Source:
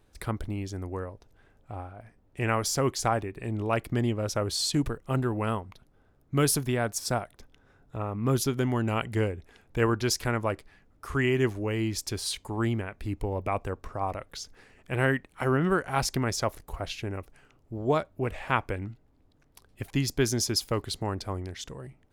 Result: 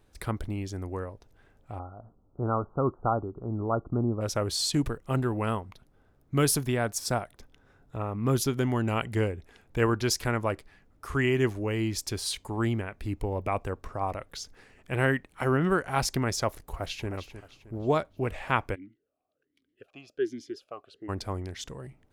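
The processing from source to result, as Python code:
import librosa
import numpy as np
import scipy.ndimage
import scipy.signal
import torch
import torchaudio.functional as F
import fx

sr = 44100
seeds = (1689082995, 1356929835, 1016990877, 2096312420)

y = fx.cheby1_lowpass(x, sr, hz=1400.0, order=8, at=(1.78, 4.2), fade=0.02)
y = fx.echo_throw(y, sr, start_s=16.48, length_s=0.61, ms=310, feedback_pct=40, wet_db=-11.5)
y = fx.vowel_sweep(y, sr, vowels='a-i', hz=1.3, at=(18.74, 21.08), fade=0.02)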